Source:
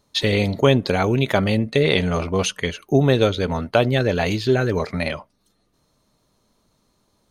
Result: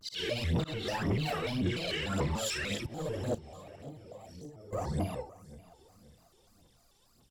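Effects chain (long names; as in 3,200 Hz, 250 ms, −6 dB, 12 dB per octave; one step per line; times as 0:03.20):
random phases in long frames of 200 ms
high-shelf EQ 3,400 Hz +8 dB
volume swells 441 ms
brickwall limiter −18.5 dBFS, peak gain reduction 12.5 dB
0:03.35–0:04.72: output level in coarse steps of 22 dB
0:02.85–0:05.64: gain on a spectral selection 1,100–5,000 Hz −16 dB
soft clipping −23.5 dBFS, distortion −16 dB
phase shifter 1.8 Hz, delay 2.3 ms, feedback 64%
repeating echo 535 ms, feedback 39%, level −19 dB
pitch modulation by a square or saw wave square 3.4 Hz, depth 250 cents
level −6.5 dB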